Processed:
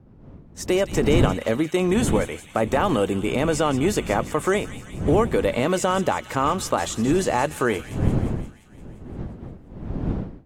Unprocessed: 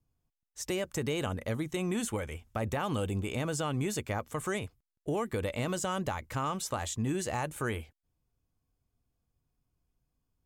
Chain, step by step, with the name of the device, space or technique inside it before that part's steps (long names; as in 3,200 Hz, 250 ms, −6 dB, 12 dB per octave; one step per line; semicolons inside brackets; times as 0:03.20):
high-pass filter 280 Hz 12 dB per octave
spectral tilt −2 dB per octave
delay with a high-pass on its return 174 ms, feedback 68%, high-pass 2,300 Hz, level −11 dB
smartphone video outdoors (wind on the microphone 210 Hz −41 dBFS; automatic gain control gain up to 12 dB; AAC 64 kbit/s 48,000 Hz)